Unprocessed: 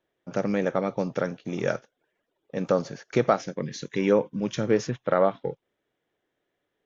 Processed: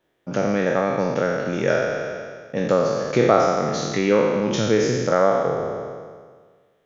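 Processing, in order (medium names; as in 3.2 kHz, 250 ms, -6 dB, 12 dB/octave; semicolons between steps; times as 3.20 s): spectral sustain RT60 1.62 s; in parallel at 0 dB: compression, threshold -30 dBFS, peak gain reduction 17.5 dB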